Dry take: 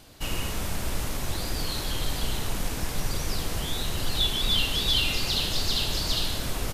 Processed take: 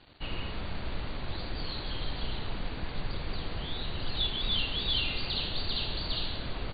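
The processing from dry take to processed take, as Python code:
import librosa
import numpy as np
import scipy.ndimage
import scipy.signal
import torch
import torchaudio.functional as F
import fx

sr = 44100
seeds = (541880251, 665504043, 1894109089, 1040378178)

y = fx.quant_dither(x, sr, seeds[0], bits=8, dither='none')
y = fx.brickwall_lowpass(y, sr, high_hz=4700.0)
y = y * librosa.db_to_amplitude(-5.5)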